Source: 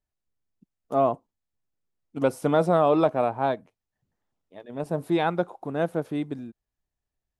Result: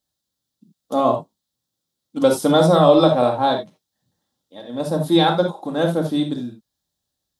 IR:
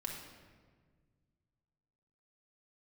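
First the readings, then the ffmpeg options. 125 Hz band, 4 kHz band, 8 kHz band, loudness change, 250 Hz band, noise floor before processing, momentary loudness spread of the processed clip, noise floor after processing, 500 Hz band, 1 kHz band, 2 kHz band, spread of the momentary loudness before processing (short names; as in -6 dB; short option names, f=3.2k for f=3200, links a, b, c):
+8.5 dB, +17.5 dB, n/a, +7.5 dB, +8.5 dB, under -85 dBFS, 14 LU, -81 dBFS, +7.0 dB, +6.5 dB, +5.0 dB, 16 LU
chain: -filter_complex "[0:a]highpass=95,highshelf=f=3k:t=q:w=3:g=6.5[a];[1:a]atrim=start_sample=2205,atrim=end_sample=3969[b];[a][b]afir=irnorm=-1:irlink=0,volume=8.5dB"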